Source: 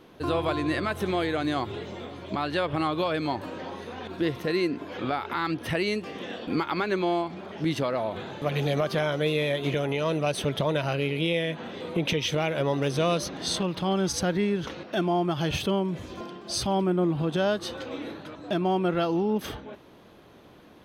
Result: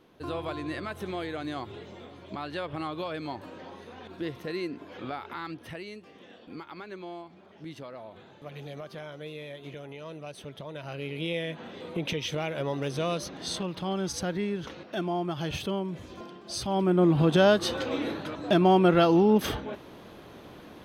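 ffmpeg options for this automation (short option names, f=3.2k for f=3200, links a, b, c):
-af "volume=12.5dB,afade=t=out:st=5.24:d=0.64:silence=0.421697,afade=t=in:st=10.71:d=0.64:silence=0.316228,afade=t=in:st=16.65:d=0.54:silence=0.316228"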